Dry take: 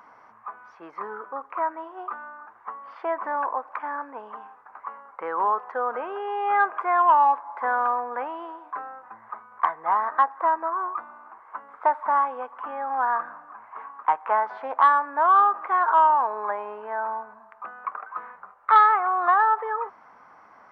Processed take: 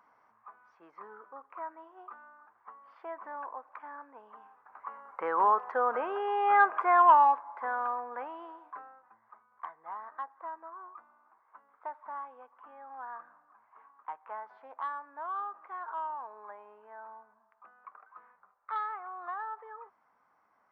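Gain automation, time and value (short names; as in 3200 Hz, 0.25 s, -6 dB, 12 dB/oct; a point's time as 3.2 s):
4.27 s -14 dB
5.22 s -1.5 dB
7.07 s -1.5 dB
7.65 s -9 dB
8.62 s -9 dB
9.21 s -19 dB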